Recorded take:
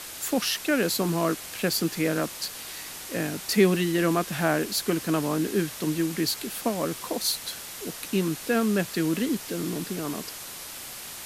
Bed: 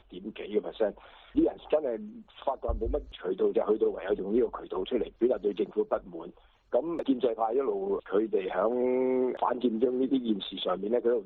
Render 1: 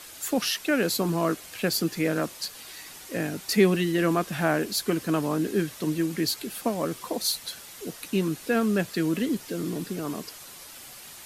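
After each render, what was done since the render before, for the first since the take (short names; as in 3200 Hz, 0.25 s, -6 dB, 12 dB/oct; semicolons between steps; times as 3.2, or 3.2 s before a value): denoiser 7 dB, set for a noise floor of -40 dBFS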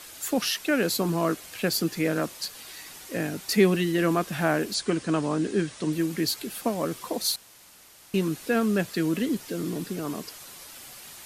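4.74–5.93 brick-wall FIR low-pass 10000 Hz; 7.36–8.14 room tone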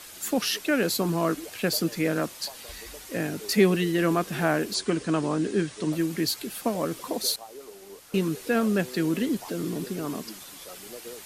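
add bed -16 dB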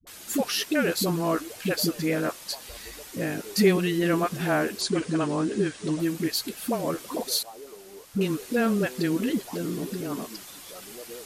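dispersion highs, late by 70 ms, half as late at 330 Hz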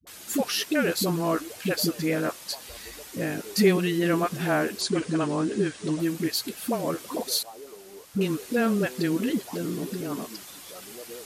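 HPF 48 Hz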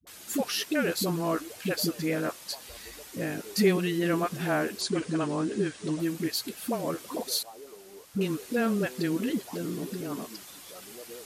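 gain -3 dB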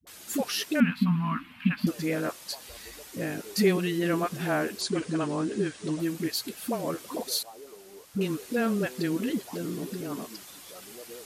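0.8–1.87 EQ curve 120 Hz 0 dB, 250 Hz +14 dB, 350 Hz -27 dB, 530 Hz -28 dB, 1000 Hz +3 dB, 1500 Hz 0 dB, 2700 Hz +4 dB, 6600 Hz -27 dB, 14000 Hz -18 dB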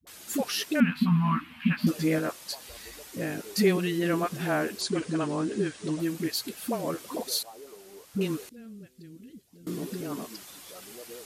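0.94–2.19 doubler 13 ms -2 dB; 8.49–9.67 passive tone stack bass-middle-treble 10-0-1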